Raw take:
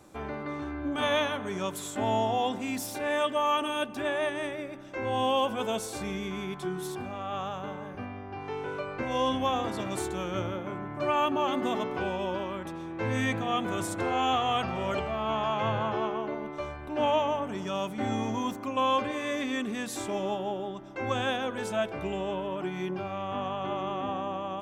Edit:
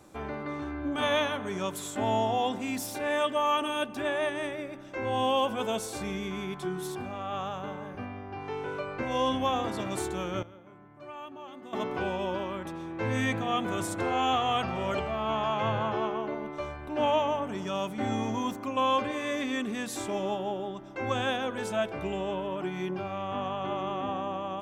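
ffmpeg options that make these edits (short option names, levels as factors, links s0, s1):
-filter_complex "[0:a]asplit=3[s0][s1][s2];[s0]atrim=end=10.43,asetpts=PTS-STARTPTS,afade=t=out:st=10.2:d=0.23:c=log:silence=0.149624[s3];[s1]atrim=start=10.43:end=11.73,asetpts=PTS-STARTPTS,volume=0.15[s4];[s2]atrim=start=11.73,asetpts=PTS-STARTPTS,afade=t=in:d=0.23:c=log:silence=0.149624[s5];[s3][s4][s5]concat=n=3:v=0:a=1"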